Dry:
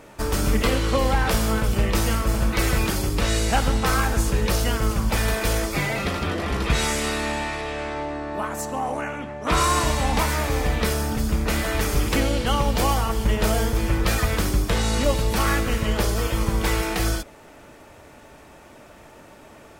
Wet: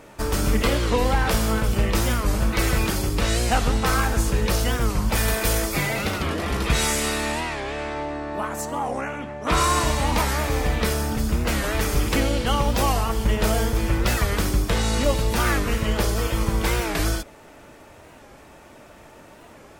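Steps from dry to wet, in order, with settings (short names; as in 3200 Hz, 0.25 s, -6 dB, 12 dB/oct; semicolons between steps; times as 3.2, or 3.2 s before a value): 5.15–7.41 high shelf 8200 Hz +8 dB; record warp 45 rpm, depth 160 cents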